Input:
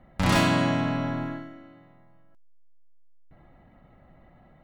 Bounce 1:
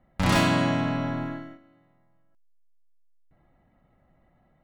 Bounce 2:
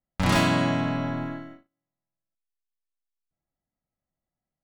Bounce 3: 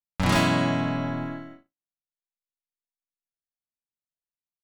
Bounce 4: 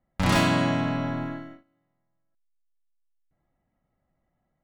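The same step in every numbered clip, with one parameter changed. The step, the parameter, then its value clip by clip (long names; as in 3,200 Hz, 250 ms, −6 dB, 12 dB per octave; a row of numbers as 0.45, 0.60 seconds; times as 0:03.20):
noise gate, range: −9, −35, −57, −21 decibels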